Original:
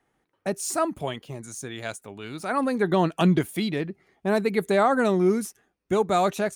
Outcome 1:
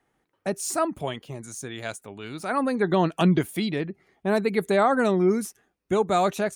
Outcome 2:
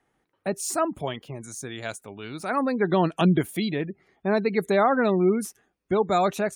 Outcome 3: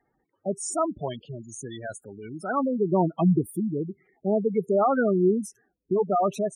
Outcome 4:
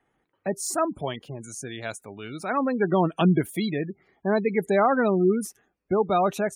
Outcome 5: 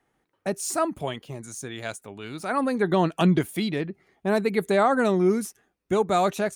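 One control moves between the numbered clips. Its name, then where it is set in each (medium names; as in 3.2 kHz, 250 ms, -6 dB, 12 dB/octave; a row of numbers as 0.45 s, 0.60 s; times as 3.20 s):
spectral gate, under each frame's peak: -50 dB, -35 dB, -10 dB, -25 dB, -60 dB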